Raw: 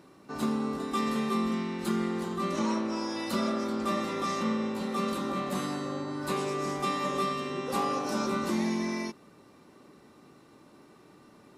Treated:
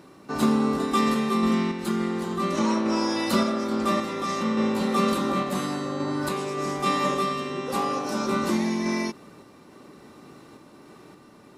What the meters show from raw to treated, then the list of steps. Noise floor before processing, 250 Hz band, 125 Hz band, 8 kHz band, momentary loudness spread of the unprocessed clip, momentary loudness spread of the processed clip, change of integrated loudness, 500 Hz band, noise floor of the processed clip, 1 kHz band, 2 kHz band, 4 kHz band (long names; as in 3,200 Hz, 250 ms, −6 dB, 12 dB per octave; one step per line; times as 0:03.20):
−57 dBFS, +6.0 dB, +5.5 dB, +5.0 dB, 4 LU, 6 LU, +5.5 dB, +5.5 dB, −51 dBFS, +5.5 dB, +5.5 dB, +5.5 dB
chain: sample-and-hold tremolo
level +8.5 dB